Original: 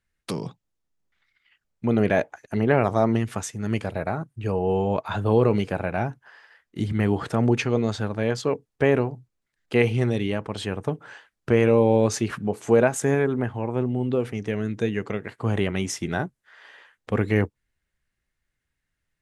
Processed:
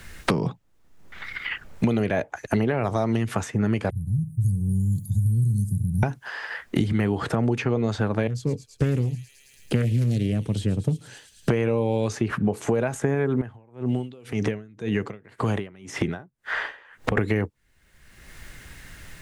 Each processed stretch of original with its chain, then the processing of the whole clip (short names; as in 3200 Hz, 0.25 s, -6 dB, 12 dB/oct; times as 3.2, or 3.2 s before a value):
3.9–6.03 elliptic band-stop 130–9800 Hz, stop band 60 dB + feedback echo 69 ms, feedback 41%, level -16 dB
8.27–11.49 EQ curve 110 Hz 0 dB, 1100 Hz -27 dB, 11000 Hz -6 dB + thin delay 0.109 s, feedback 64%, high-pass 4200 Hz, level -10.5 dB + Doppler distortion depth 0.44 ms
13.41–17.17 compressor 3:1, threshold -39 dBFS + dB-linear tremolo 1.9 Hz, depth 31 dB
whole clip: compressor 2.5:1, threshold -27 dBFS; maximiser +15.5 dB; three-band squash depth 100%; gain -9 dB